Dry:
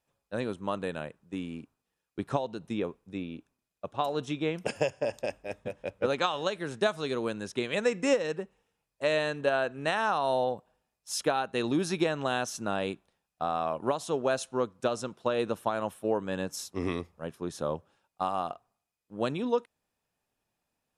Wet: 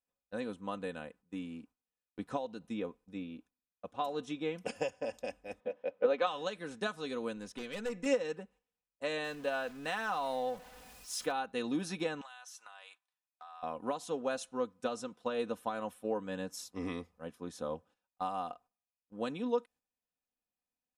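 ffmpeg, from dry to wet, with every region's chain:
ffmpeg -i in.wav -filter_complex "[0:a]asettb=1/sr,asplit=3[link_01][link_02][link_03];[link_01]atrim=end=5.604[link_04];[link_02]atrim=start=5.6:end=6.27,asetpts=PTS-STARTPTS,afade=type=in:duration=0.004:curve=qsin,afade=type=out:start_time=0.666:duration=0.004:curve=qsin,highpass=240,lowpass=3400,equalizer=frequency=530:width=1.6:gain=6[link_05];[link_03]atrim=start=6.266[link_06];[link_04][link_05]acrossfade=duration=0.004:curve1=hsin:curve2=qsin[link_07];[link_07][link_06]acrossfade=duration=0.004:curve1=qsin:curve2=hsin,asettb=1/sr,asplit=3[link_08][link_09][link_10];[link_08]atrim=end=7.374[link_11];[link_09]atrim=start=7.37:end=8.06,asetpts=PTS-STARTPTS,afade=type=in:duration=0.004:curve=qsin,afade=type=out:start_time=0.686:duration=0.004:curve=qsin,highpass=51,acompressor=mode=upward:threshold=-41dB:ratio=2.5:attack=3.2:release=140:knee=2.83:detection=peak,aeval=exprs='(tanh(25.1*val(0)+0.3)-tanh(0.3))/25.1':channel_layout=same[link_12];[link_10]atrim=start=8.056[link_13];[link_11][link_12]acrossfade=duration=0.004:curve1=hsin:curve2=qsin[link_14];[link_14][link_13]acrossfade=duration=0.004:curve1=qsin:curve2=hsin,asettb=1/sr,asplit=3[link_15][link_16][link_17];[link_15]atrim=end=9.244[link_18];[link_16]atrim=start=9.24:end=11.32,asetpts=PTS-STARTPTS,afade=type=in:duration=0.004:curve=qsin,afade=type=out:start_time=2.076:duration=0.004:curve=qsin,aeval=exprs='val(0)+0.5*0.00891*sgn(val(0))':channel_layout=same,equalizer=frequency=290:width=0.55:gain=-3[link_19];[link_17]atrim=start=11.316[link_20];[link_18][link_19]acrossfade=duration=0.004:curve1=hsin:curve2=qsin[link_21];[link_21][link_20]acrossfade=duration=0.004:curve1=qsin:curve2=hsin,asettb=1/sr,asplit=3[link_22][link_23][link_24];[link_22]atrim=end=12.214[link_25];[link_23]atrim=start=12.21:end=13.63,asetpts=PTS-STARTPTS,afade=type=in:duration=0.004:curve=qsin,afade=type=out:start_time=1.416:duration=0.004:curve=qsin,highpass=frequency=870:width=0.5412,highpass=frequency=870:width=1.3066,acompressor=threshold=-40dB:ratio=10:attack=3.2:release=140:knee=1:detection=peak[link_26];[link_24]atrim=start=13.626[link_27];[link_25][link_26]acrossfade=duration=0.004:curve1=hsin:curve2=qsin[link_28];[link_28][link_27]acrossfade=duration=0.004:curve1=qsin:curve2=hsin,agate=range=-9dB:threshold=-53dB:ratio=16:detection=peak,aecho=1:1:4:0.63,volume=-8dB" out.wav

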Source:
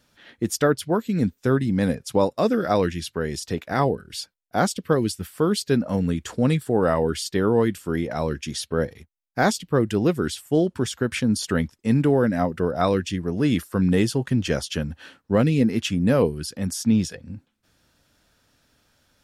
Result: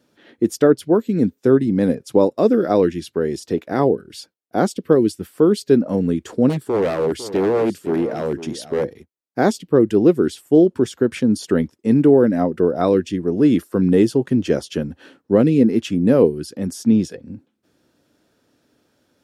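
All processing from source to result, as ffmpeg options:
ffmpeg -i in.wav -filter_complex "[0:a]asettb=1/sr,asplit=3[link_01][link_02][link_03];[link_01]atrim=end=6.494[link_04];[link_02]atrim=start=6.49:end=8.85,asetpts=PTS-STARTPTS,afade=type=in:duration=0.004:curve=qsin,afade=type=out:start_time=2.356:duration=0.004:curve=qsin,aeval=exprs='0.126*(abs(mod(val(0)/0.126+3,4)-2)-1)':channel_layout=same,aecho=1:1:504:0.211,atrim=end_sample=104076[link_05];[link_03]atrim=start=8.846[link_06];[link_04][link_05]acrossfade=duration=0.004:curve1=hsin:curve2=qsin[link_07];[link_07][link_06]acrossfade=duration=0.004:curve1=qsin:curve2=hsin,highpass=82,equalizer=frequency=350:width=0.78:gain=13.5,volume=-4dB" out.wav

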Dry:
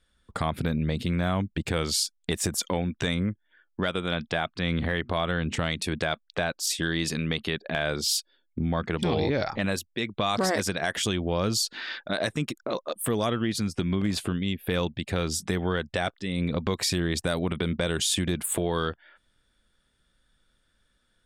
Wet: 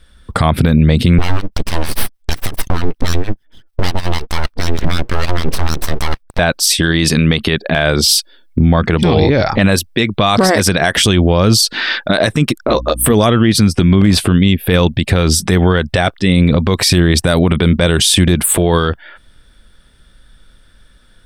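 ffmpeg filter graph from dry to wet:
ffmpeg -i in.wav -filter_complex "[0:a]asettb=1/sr,asplit=3[link_01][link_02][link_03];[link_01]atrim=end=1.184[link_04];[link_02]atrim=start=1.18:end=6.39,asetpts=PTS-STARTPTS,afade=type=in:duration=0.004:curve=qsin,afade=type=out:start_time=5.206:duration=0.004:curve=qsin,acrossover=split=640[link_05][link_06];[link_05]aeval=exprs='val(0)*(1-1/2+1/2*cos(2*PI*6.5*n/s))':channel_layout=same[link_07];[link_06]aeval=exprs='val(0)*(1-1/2-1/2*cos(2*PI*6.5*n/s))':channel_layout=same[link_08];[link_07][link_08]amix=inputs=2:normalize=0,aeval=exprs='abs(val(0))':channel_layout=same[link_09];[link_03]atrim=start=6.386[link_10];[link_04][link_09]acrossfade=duration=0.004:curve1=hsin:curve2=qsin[link_11];[link_11][link_10]acrossfade=duration=0.004:curve1=qsin:curve2=hsin,asettb=1/sr,asplit=3[link_12][link_13][link_14];[link_12]atrim=end=12.684[link_15];[link_13]atrim=start=12.68:end=13.13,asetpts=PTS-STARTPTS,afade=type=in:duration=0.004:curve=qsin,afade=type=out:start_time=0.446:duration=0.004:curve=qsin,deesser=0.3,aeval=exprs='val(0)+0.00447*(sin(2*PI*60*n/s)+sin(2*PI*2*60*n/s)/2+sin(2*PI*3*60*n/s)/3+sin(2*PI*4*60*n/s)/4+sin(2*PI*5*60*n/s)/5)':channel_layout=same,asplit=2[link_16][link_17];[link_17]adelay=13,volume=-8.5dB[link_18];[link_16][link_18]amix=inputs=2:normalize=0,atrim=end_sample=19845[link_19];[link_14]atrim=start=13.126[link_20];[link_15][link_19]acrossfade=duration=0.004:curve1=hsin:curve2=qsin[link_21];[link_21][link_20]acrossfade=duration=0.004:curve1=qsin:curve2=hsin,lowshelf=frequency=99:gain=8.5,bandreject=frequency=6900:width=7.3,alimiter=level_in=19dB:limit=-1dB:release=50:level=0:latency=1,volume=-1dB" out.wav

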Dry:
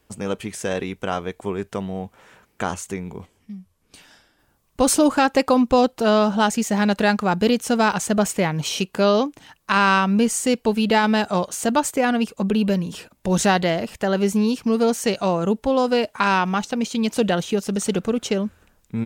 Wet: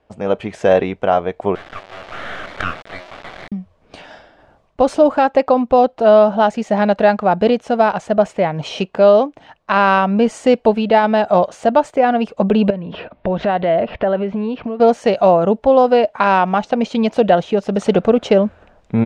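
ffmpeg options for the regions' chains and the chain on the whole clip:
ffmpeg -i in.wav -filter_complex "[0:a]asettb=1/sr,asplit=3[link_01][link_02][link_03];[link_01]atrim=end=1.554[link_04];[link_02]atrim=start=1.55:end=3.52,asetpts=PTS-STARTPTS,afade=type=in:duration=0.004:curve=qsin,afade=type=out:start_time=1.966:duration=0.004:curve=qsin,aeval=exprs='val(0)+0.5*0.0422*sgn(val(0))':channel_layout=same,asuperpass=centerf=1600:order=20:qfactor=1.3,acrusher=bits=4:dc=4:mix=0:aa=0.000001[link_05];[link_03]atrim=start=3.516[link_06];[link_04][link_05]acrossfade=duration=0.004:curve1=hsin:curve2=qsin[link_07];[link_07][link_06]acrossfade=duration=0.004:curve1=qsin:curve2=hsin,asettb=1/sr,asplit=3[link_08][link_09][link_10];[link_08]atrim=end=12.704[link_11];[link_09]atrim=start=12.7:end=14.8,asetpts=PTS-STARTPTS,afade=type=in:duration=0.004:curve=qsin,afade=type=out:start_time=2.096:duration=0.004:curve=qsin,lowpass=frequency=3500:width=0.5412,lowpass=frequency=3500:width=1.3066,bandreject=frequency=820:width=14,acompressor=threshold=-31dB:ratio=5:attack=3.2:release=140:knee=1:detection=peak[link_12];[link_10]atrim=start=14.796[link_13];[link_11][link_12]acrossfade=duration=0.004:curve1=hsin:curve2=qsin[link_14];[link_14][link_13]acrossfade=duration=0.004:curve1=qsin:curve2=hsin,lowpass=3200,equalizer=frequency=650:width_type=o:width=0.83:gain=12,dynaudnorm=framelen=170:gausssize=3:maxgain=11.5dB,volume=-1dB" out.wav

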